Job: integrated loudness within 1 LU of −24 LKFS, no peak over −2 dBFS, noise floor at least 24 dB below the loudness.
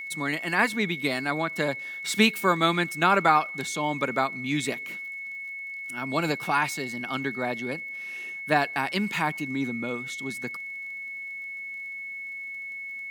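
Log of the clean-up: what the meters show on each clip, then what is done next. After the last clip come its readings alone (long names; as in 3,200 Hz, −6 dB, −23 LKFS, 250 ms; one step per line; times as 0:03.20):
crackle rate 30 per second; interfering tone 2,200 Hz; level of the tone −34 dBFS; integrated loudness −27.5 LKFS; sample peak −5.5 dBFS; target loudness −24.0 LKFS
→ click removal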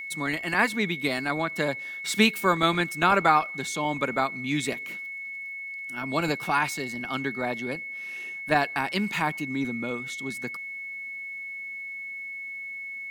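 crackle rate 0.92 per second; interfering tone 2,200 Hz; level of the tone −34 dBFS
→ notch filter 2,200 Hz, Q 30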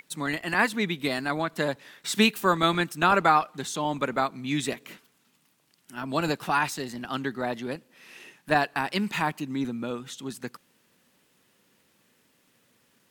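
interfering tone none found; integrated loudness −27.0 LKFS; sample peak −6.0 dBFS; target loudness −24.0 LKFS
→ level +3 dB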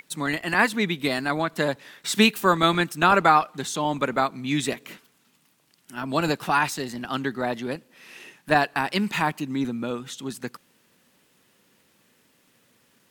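integrated loudness −24.0 LKFS; sample peak −3.0 dBFS; background noise floor −64 dBFS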